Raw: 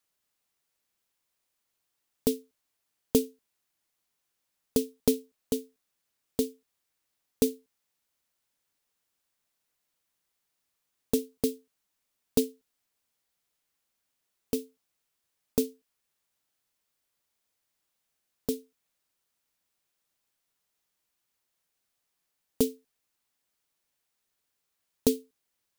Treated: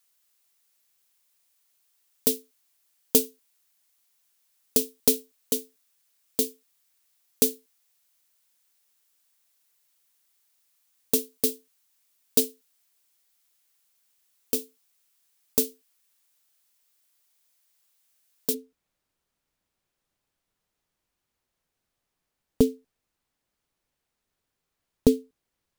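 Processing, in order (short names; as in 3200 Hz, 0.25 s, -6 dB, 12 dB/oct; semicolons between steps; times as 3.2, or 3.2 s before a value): tilt +2.5 dB/oct, from 18.53 s -2 dB/oct; gain +2.5 dB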